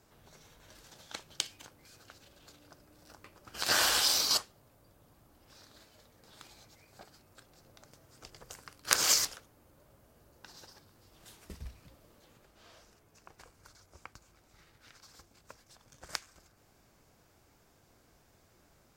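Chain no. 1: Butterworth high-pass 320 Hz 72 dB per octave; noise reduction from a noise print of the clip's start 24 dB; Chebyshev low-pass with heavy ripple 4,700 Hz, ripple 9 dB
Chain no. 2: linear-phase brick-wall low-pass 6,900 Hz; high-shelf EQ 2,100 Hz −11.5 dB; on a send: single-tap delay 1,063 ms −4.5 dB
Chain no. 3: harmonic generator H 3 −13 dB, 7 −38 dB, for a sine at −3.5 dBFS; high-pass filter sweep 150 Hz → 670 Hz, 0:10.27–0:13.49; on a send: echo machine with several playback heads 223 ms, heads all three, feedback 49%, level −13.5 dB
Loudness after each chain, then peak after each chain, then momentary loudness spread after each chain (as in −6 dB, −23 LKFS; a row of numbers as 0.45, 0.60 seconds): −36.5, −39.5, −40.0 LKFS; −15.0, −11.0, −3.0 dBFS; 20, 25, 24 LU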